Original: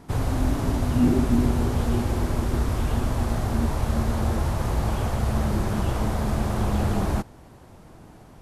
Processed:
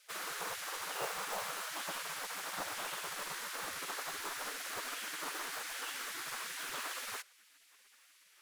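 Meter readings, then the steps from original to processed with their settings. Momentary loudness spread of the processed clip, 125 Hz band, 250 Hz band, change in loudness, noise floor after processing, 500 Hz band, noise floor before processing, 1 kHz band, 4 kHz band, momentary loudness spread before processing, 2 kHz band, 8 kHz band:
2 LU, under -40 dB, -33.0 dB, -14.5 dB, -65 dBFS, -17.5 dB, -48 dBFS, -10.0 dB, -1.0 dB, 5 LU, -2.0 dB, -0.5 dB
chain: short-mantissa float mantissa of 4-bit; spectral gate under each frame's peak -25 dB weak; gain -1 dB

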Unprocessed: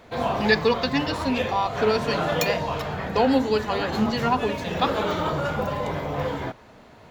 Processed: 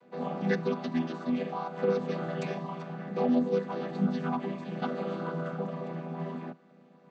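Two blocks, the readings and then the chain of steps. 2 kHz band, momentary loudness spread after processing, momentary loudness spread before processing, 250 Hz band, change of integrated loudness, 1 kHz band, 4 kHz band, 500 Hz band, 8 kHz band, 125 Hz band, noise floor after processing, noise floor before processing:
-14.0 dB, 10 LU, 8 LU, -4.5 dB, -8.0 dB, -12.5 dB, -19.0 dB, -8.5 dB, under -15 dB, -6.0 dB, -59 dBFS, -49 dBFS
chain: chord vocoder minor triad, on E3; gain -6.5 dB

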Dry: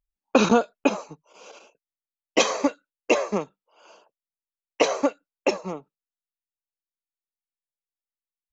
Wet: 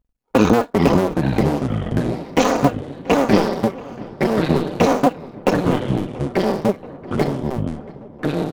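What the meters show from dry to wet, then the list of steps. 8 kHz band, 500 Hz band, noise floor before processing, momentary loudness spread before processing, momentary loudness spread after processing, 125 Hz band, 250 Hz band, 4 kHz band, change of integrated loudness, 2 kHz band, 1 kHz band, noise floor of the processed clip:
n/a, +7.0 dB, under -85 dBFS, 15 LU, 11 LU, +20.5 dB, +10.5 dB, +2.0 dB, +4.5 dB, +4.0 dB, +8.0 dB, -44 dBFS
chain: cycle switcher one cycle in 2, muted; tilt shelf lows +6 dB, about 1200 Hz; comb 4.1 ms, depth 36%; limiter -12 dBFS, peak gain reduction 10.5 dB; echoes that change speed 0.306 s, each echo -4 st, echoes 3; darkening echo 0.681 s, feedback 79%, low-pass 2200 Hz, level -20 dB; gain +9 dB

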